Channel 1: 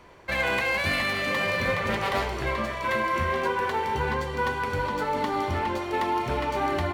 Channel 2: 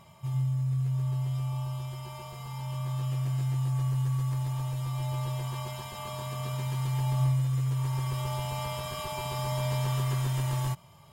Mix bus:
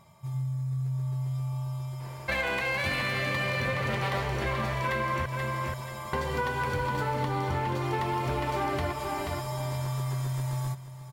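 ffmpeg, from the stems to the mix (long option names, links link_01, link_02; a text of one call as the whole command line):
ffmpeg -i stem1.wav -i stem2.wav -filter_complex "[0:a]adelay=2000,volume=2dB,asplit=3[link_01][link_02][link_03];[link_01]atrim=end=5.26,asetpts=PTS-STARTPTS,afade=type=out:start_time=5.256:duration=0.004:curve=hsin[link_04];[link_02]atrim=start=5.26:end=6.13,asetpts=PTS-STARTPTS,volume=0[link_05];[link_03]atrim=start=6.13,asetpts=PTS-STARTPTS,afade=type=in:duration=0.004:curve=hsin[link_06];[link_04][link_05][link_06]concat=n=3:v=0:a=1,asplit=2[link_07][link_08];[link_08]volume=-9dB[link_09];[1:a]equalizer=frequency=2900:width=7:gain=-11.5,volume=-2.5dB,asplit=2[link_10][link_11];[link_11]volume=-14.5dB[link_12];[link_09][link_12]amix=inputs=2:normalize=0,aecho=0:1:481|962|1443|1924:1|0.31|0.0961|0.0298[link_13];[link_07][link_10][link_13]amix=inputs=3:normalize=0,acompressor=threshold=-26dB:ratio=6" out.wav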